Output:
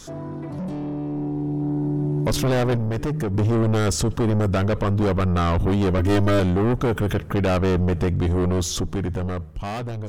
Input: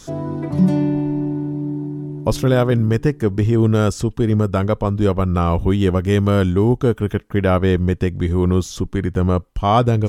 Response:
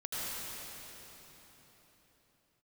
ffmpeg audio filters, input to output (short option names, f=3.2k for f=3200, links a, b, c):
-filter_complex "[0:a]bandreject=f=76.81:t=h:w=4,bandreject=f=153.62:t=h:w=4,asoftclip=type=tanh:threshold=-21dB,asplit=2[a][b];[1:a]atrim=start_sample=2205,asetrate=83790,aresample=44100,highshelf=f=4.5k:g=-11.5[c];[b][c]afir=irnorm=-1:irlink=0,volume=-27.5dB[d];[a][d]amix=inputs=2:normalize=0,alimiter=level_in=3.5dB:limit=-24dB:level=0:latency=1:release=39,volume=-3.5dB,asettb=1/sr,asplit=3[e][f][g];[e]atrim=end=0.614[h];[f]atrim=start=0.61:end=1.6,asetpts=PTS-STARTPTS,afade=t=in:d=0.004:c=qsin,afade=t=out:st=0.986:d=0.004:c=qsin,equalizer=f=1.4k:t=o:w=0.7:g=-7.5[i];[g]atrim=start=1.596[j];[h][i]acrossfade=d=0.004:c1=hsin:c2=qsin[k];[k][j]acrossfade=d=0.004:c1=qsin:c2=hsin,asettb=1/sr,asplit=3[l][m][n];[l]atrim=end=2.754[o];[m]atrim=start=2.75:end=3.34,asetpts=PTS-STARTPTS,afade=t=in:d=0.004:c=qsin,afade=t=out:st=0.586:d=0.004:c=qsin,acompressor=threshold=-33dB:ratio=6[p];[n]atrim=start=3.336[q];[o][p]acrossfade=d=0.004:c1=hsin:c2=qsin[r];[r][q]acrossfade=d=0.004:c1=qsin:c2=hsin,asettb=1/sr,asplit=3[s][t][u];[s]atrim=end=5.984[v];[t]atrim=start=5.98:end=6.4,asetpts=PTS-STARTPTS,afade=t=in:d=0.004:c=qsin,afade=t=out:st=0.416:d=0.004:c=qsin,aecho=1:1:3.2:0.99,atrim=end_sample=18522[w];[u]atrim=start=6.396[x];[v][w]acrossfade=d=0.004:c1=hsin:c2=qsin[y];[y][x]acrossfade=d=0.004:c1=qsin:c2=hsin,dynaudnorm=f=270:g=11:m=10.5dB"